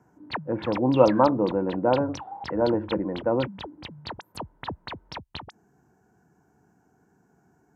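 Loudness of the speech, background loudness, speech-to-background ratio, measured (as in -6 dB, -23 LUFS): -24.5 LUFS, -38.5 LUFS, 14.0 dB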